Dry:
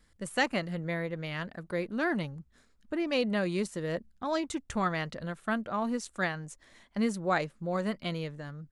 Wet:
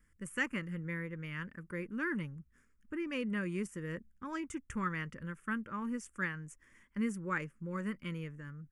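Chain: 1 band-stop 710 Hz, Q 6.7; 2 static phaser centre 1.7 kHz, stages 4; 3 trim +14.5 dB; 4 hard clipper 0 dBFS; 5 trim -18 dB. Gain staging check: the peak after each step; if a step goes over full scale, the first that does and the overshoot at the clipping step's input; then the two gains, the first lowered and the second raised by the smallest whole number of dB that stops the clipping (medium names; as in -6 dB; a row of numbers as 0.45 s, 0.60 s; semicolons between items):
-15.0 dBFS, -17.0 dBFS, -2.5 dBFS, -2.5 dBFS, -20.5 dBFS; nothing clips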